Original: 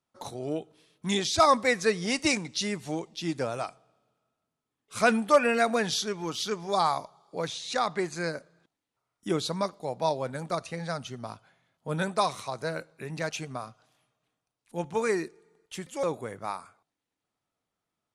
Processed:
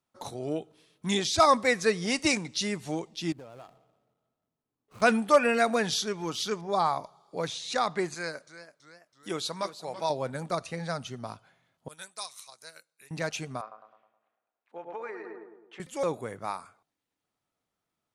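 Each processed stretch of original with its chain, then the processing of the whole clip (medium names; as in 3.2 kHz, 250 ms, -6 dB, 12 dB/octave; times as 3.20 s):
3.32–5.02 s: median filter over 25 samples + compression 4:1, threshold -45 dBFS
6.61–7.04 s: treble shelf 3 kHz -9 dB + tape noise reduction on one side only decoder only
8.14–10.10 s: bass shelf 460 Hz -10.5 dB + modulated delay 332 ms, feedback 52%, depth 133 cents, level -13 dB
11.88–13.11 s: pre-emphasis filter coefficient 0.97 + transient shaper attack 0 dB, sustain -6 dB
13.61–15.80 s: filtered feedback delay 105 ms, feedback 56%, low-pass 1.3 kHz, level -5.5 dB + compression 10:1, threshold -31 dBFS + Butterworth band-pass 1 kHz, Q 0.56
whole clip: none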